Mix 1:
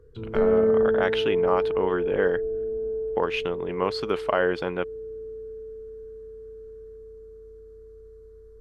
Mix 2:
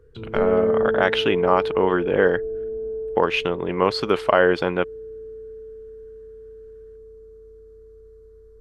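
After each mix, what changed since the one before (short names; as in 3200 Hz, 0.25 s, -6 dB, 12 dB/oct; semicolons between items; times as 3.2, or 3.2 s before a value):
speech +6.5 dB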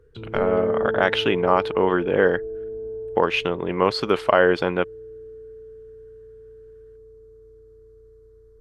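background: send -6.5 dB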